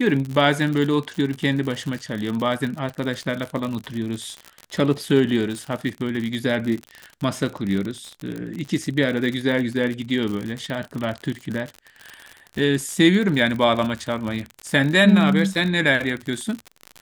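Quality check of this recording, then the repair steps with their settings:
surface crackle 60 per second −26 dBFS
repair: click removal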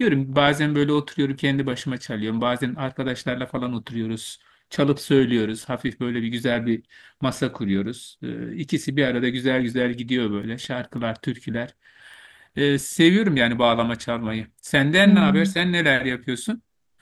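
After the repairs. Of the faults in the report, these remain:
none of them is left

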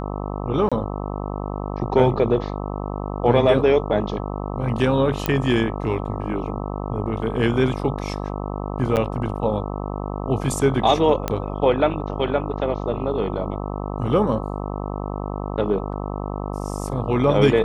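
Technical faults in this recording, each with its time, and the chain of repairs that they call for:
mains buzz 50 Hz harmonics 26 −28 dBFS
0:00.69–0:00.72: drop-out 26 ms
0:05.26: click −6 dBFS
0:08.96–0:08.97: drop-out 8.7 ms
0:11.28: click −8 dBFS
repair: click removal
hum removal 50 Hz, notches 26
repair the gap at 0:00.69, 26 ms
repair the gap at 0:08.96, 8.7 ms

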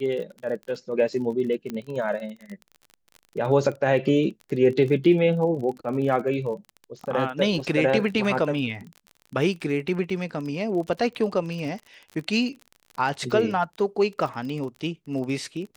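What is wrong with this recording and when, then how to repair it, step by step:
surface crackle 33 per second −33 dBFS
0:01.70: click −18 dBFS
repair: click removal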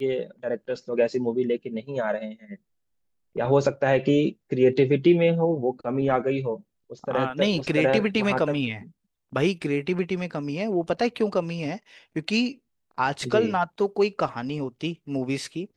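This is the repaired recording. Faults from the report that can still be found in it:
none of them is left

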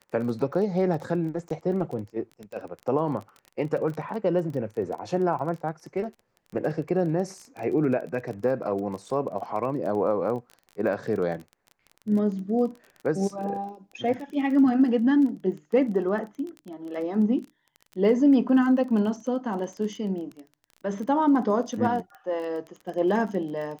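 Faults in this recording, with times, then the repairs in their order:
surface crackle 21 per second −34 dBFS
0:01.49–0:01.50: drop-out 13 ms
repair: click removal
repair the gap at 0:01.49, 13 ms

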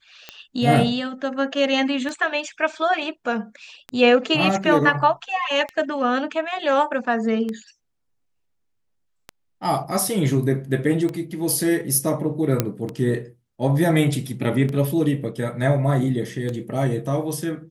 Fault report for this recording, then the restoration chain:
scratch tick 33 1/3 rpm −16 dBFS
0:12.60: click −4 dBFS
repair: click removal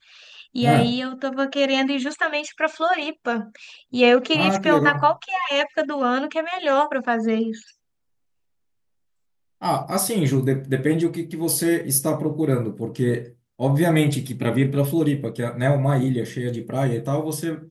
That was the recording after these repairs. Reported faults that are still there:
none of them is left

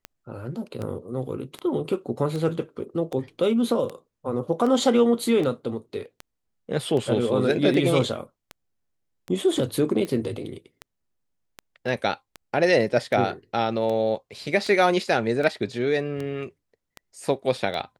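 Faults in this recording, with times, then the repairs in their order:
scratch tick 78 rpm −19 dBFS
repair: click removal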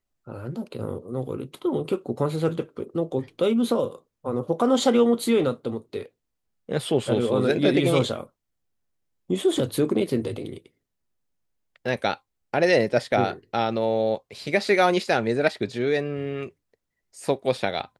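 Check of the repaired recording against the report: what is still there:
none of them is left

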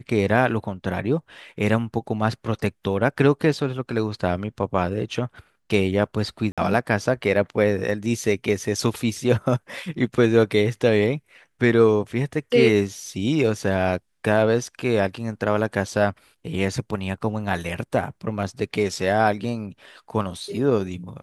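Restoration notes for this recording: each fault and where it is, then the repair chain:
0:06.52–0:06.58: drop-out 56 ms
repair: repair the gap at 0:06.52, 56 ms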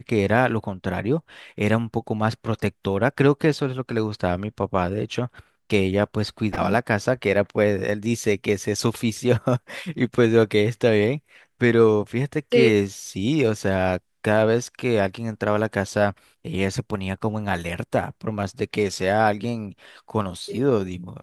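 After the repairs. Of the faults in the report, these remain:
none of them is left

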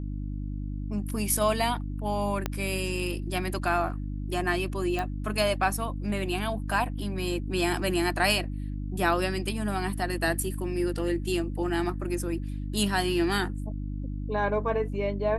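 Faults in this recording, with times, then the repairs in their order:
mains hum 50 Hz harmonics 6 −33 dBFS
0:02.46: click −13 dBFS
0:04.99: click −17 dBFS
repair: click removal
hum removal 50 Hz, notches 6

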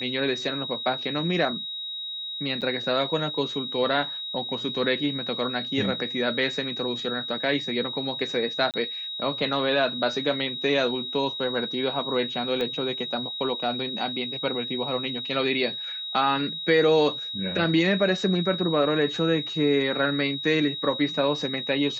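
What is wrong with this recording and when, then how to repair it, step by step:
whistle 3,800 Hz −31 dBFS
0:02.61–0:02.62: drop-out 7.8 ms
0:08.71–0:08.74: drop-out 28 ms
0:12.61: click −17 dBFS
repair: click removal
notch filter 3,800 Hz, Q 30
repair the gap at 0:02.61, 7.8 ms
repair the gap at 0:08.71, 28 ms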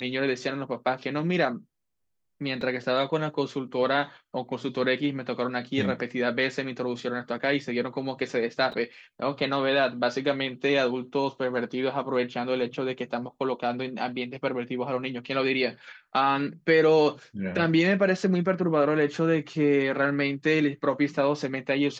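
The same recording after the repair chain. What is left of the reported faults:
0:12.61: click

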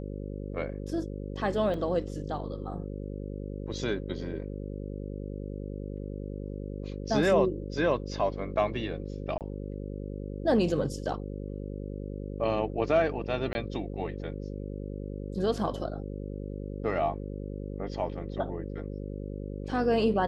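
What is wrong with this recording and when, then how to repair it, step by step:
mains buzz 50 Hz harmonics 11 −37 dBFS
0:01.74: drop-out 2.6 ms
0:09.38–0:09.41: drop-out 28 ms
0:13.53–0:13.55: drop-out 20 ms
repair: hum removal 50 Hz, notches 11
repair the gap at 0:01.74, 2.6 ms
repair the gap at 0:09.38, 28 ms
repair the gap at 0:13.53, 20 ms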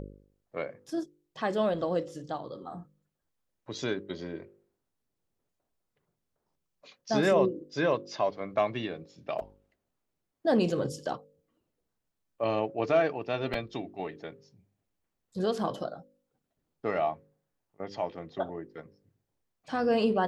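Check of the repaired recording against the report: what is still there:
none of them is left

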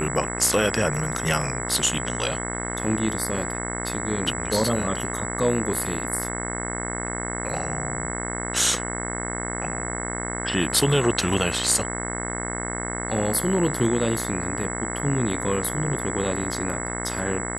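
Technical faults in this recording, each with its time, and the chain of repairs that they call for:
mains buzz 60 Hz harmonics 36 −31 dBFS
whistle 7,800 Hz −32 dBFS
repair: notch filter 7,800 Hz, Q 30
hum removal 60 Hz, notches 36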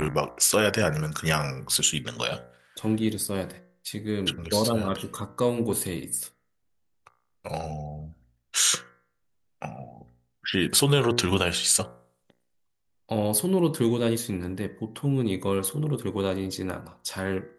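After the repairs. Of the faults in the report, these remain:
none of them is left

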